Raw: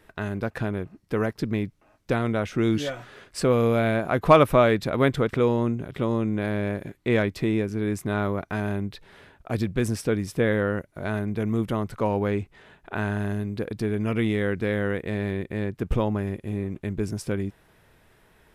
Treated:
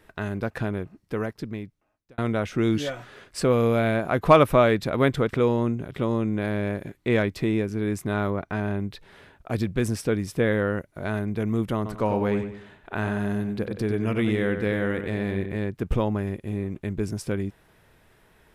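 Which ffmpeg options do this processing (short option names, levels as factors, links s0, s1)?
-filter_complex "[0:a]asettb=1/sr,asplit=3[s0][s1][s2];[s0]atrim=end=8.304[s3];[s1]atrim=start=8.3:end=8.8,asetpts=PTS-STARTPTS,afade=t=in:d=0.004:c=qsin,afade=t=out:st=0.496:d=0.004:c=qsin,aemphasis=mode=reproduction:type=cd[s4];[s2]atrim=start=8.796[s5];[s3][s4]acrossfade=d=0.004:c1=hsin:c2=qsin[s6];[s6][s5]acrossfade=d=0.004:c1=qsin:c2=hsin,asettb=1/sr,asplit=3[s7][s8][s9];[s7]atrim=end=11.764[s10];[s8]atrim=start=11.76:end=15.57,asetpts=PTS-STARTPTS,afade=t=in:d=0.004:c=qsin,afade=t=out:st=3.806:d=0.004:c=qsin,asplit=2[s11][s12];[s12]adelay=93,lowpass=f=4000:p=1,volume=0.422,asplit=2[s13][s14];[s14]adelay=93,lowpass=f=4000:p=1,volume=0.38,asplit=2[s15][s16];[s16]adelay=93,lowpass=f=4000:p=1,volume=0.38,asplit=2[s17][s18];[s18]adelay=93,lowpass=f=4000:p=1,volume=0.38[s19];[s11][s13][s15][s17][s19]amix=inputs=5:normalize=0,atrim=end_sample=168021[s20];[s9]atrim=start=15.566[s21];[s10][s20]acrossfade=d=0.004:c1=hsin:c2=qsin[s22];[s22][s21]acrossfade=d=0.004:c1=qsin:c2=hsin,asplit=2[s23][s24];[s23]atrim=end=2.18,asetpts=PTS-STARTPTS,afade=t=out:st=0.74:d=1.44[s25];[s24]atrim=start=2.18,asetpts=PTS-STARTPTS,afade=t=in:d=0.004:c=hsin[s26];[s25][s26]concat=n=2:v=0:a=1"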